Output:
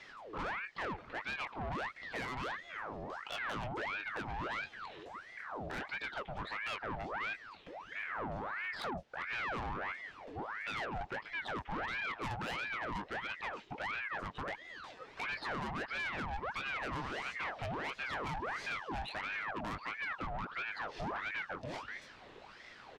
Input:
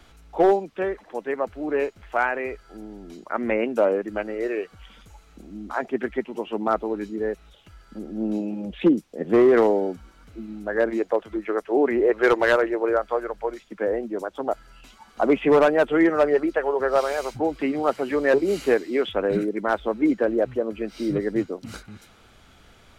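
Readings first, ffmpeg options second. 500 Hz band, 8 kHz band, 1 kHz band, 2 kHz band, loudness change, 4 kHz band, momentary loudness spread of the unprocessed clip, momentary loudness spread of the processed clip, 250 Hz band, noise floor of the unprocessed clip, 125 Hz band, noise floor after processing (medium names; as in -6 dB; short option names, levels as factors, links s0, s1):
-25.0 dB, no reading, -10.5 dB, -7.0 dB, -16.5 dB, -4.5 dB, 15 LU, 7 LU, -23.0 dB, -54 dBFS, -7.5 dB, -56 dBFS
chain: -filter_complex "[0:a]lowpass=3800,acompressor=threshold=0.0447:ratio=6,asplit=2[s0][s1];[s1]adelay=21,volume=0.398[s2];[s0][s2]amix=inputs=2:normalize=0,asoftclip=type=tanh:threshold=0.0188,aeval=exprs='val(0)*sin(2*PI*1200*n/s+1200*0.7/1.5*sin(2*PI*1.5*n/s))':c=same,volume=1.12"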